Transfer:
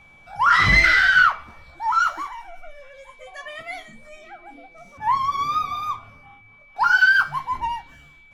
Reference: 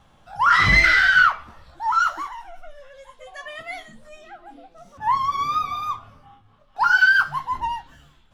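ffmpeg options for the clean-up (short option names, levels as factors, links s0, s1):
-af "bandreject=f=2300:w=30"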